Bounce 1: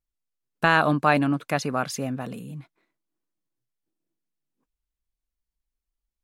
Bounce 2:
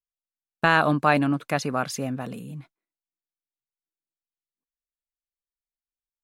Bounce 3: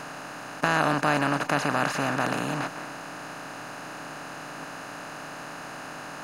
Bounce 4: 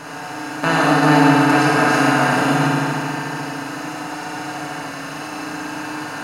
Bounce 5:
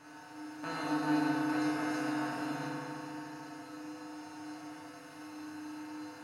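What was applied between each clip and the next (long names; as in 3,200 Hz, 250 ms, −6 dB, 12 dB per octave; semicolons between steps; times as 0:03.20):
noise gate with hold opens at −31 dBFS
compressor on every frequency bin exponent 0.2; level −8.5 dB
feedback delay network reverb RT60 3.3 s, high-frequency decay 0.9×, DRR −8 dB; level +1 dB
tuned comb filter 100 Hz, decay 0.42 s, harmonics odd, mix 90%; level −8 dB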